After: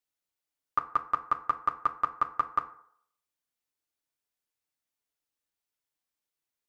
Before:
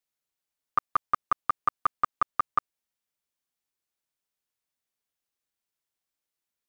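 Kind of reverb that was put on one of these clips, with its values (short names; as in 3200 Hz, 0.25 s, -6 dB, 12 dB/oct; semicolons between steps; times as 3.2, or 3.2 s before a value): FDN reverb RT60 0.64 s, low-frequency decay 0.75×, high-frequency decay 0.5×, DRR 7 dB; gain -2.5 dB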